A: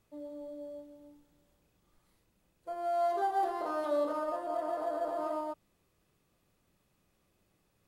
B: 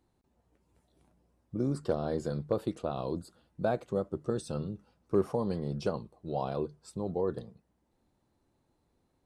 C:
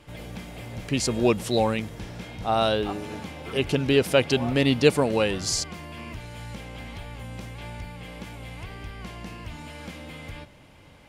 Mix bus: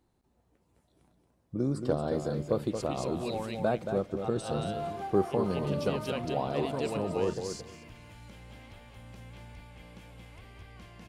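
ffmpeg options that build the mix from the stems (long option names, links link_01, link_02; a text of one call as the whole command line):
ffmpeg -i stem1.wav -i stem2.wav -i stem3.wav -filter_complex "[0:a]adelay=1800,volume=-7dB[link_01];[1:a]volume=1dB,asplit=3[link_02][link_03][link_04];[link_03]volume=-7.5dB[link_05];[2:a]adelay=1750,volume=-13dB,asplit=2[link_06][link_07];[link_07]volume=-4.5dB[link_08];[link_04]apad=whole_len=566140[link_09];[link_06][link_09]sidechaincompress=threshold=-46dB:ratio=8:attack=34:release=104[link_10];[link_05][link_08]amix=inputs=2:normalize=0,aecho=0:1:226|452|678:1|0.16|0.0256[link_11];[link_01][link_02][link_10][link_11]amix=inputs=4:normalize=0" out.wav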